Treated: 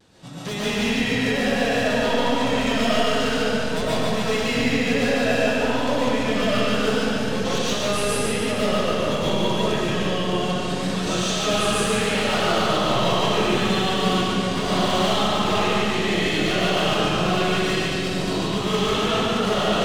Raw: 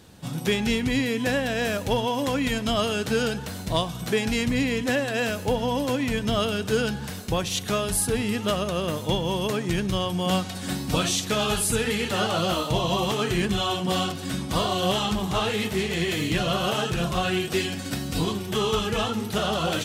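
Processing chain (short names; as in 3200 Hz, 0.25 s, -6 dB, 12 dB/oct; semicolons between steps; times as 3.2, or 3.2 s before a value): LPF 7500 Hz 12 dB/oct; low shelf 110 Hz -8.5 dB; 9.86–11.36 compressor, threshold -24 dBFS, peak gain reduction 4.5 dB; wavefolder -20 dBFS; vibrato 0.75 Hz 37 cents; split-band echo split 510 Hz, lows 0.656 s, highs 0.145 s, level -3.5 dB; digital reverb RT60 1.7 s, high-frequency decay 0.75×, pre-delay 80 ms, DRR -7.5 dB; gain -4.5 dB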